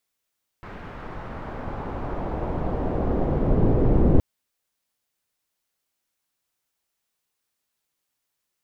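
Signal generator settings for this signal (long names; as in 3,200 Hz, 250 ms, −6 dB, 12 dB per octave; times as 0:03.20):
filter sweep on noise pink, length 3.57 s lowpass, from 1,700 Hz, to 350 Hz, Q 1.1, exponential, gain ramp +25 dB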